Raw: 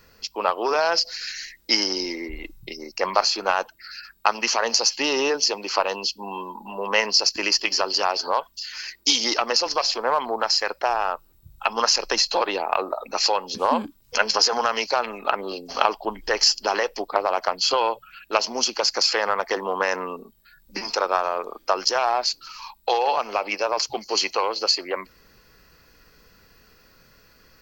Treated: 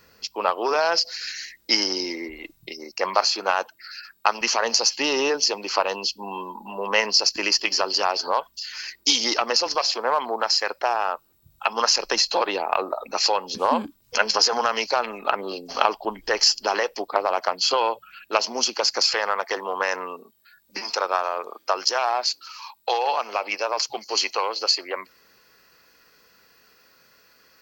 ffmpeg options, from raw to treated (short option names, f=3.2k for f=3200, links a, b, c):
-af "asetnsamples=n=441:p=0,asendcmd='2.3 highpass f 240;4.41 highpass f 60;9.75 highpass f 210;11.89 highpass f 61;16.65 highpass f 150;19.14 highpass f 490',highpass=f=110:p=1"